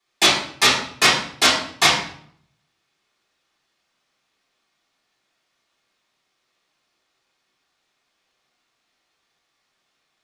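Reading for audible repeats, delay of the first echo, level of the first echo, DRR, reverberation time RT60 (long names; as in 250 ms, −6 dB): no echo audible, no echo audible, no echo audible, −10.0 dB, 0.60 s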